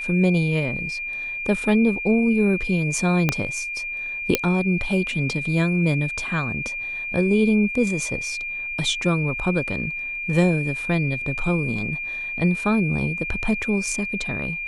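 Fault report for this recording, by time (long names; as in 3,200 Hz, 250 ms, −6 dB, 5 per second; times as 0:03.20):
whistle 2,400 Hz −27 dBFS
0:03.29: click −5 dBFS
0:04.35: click −2 dBFS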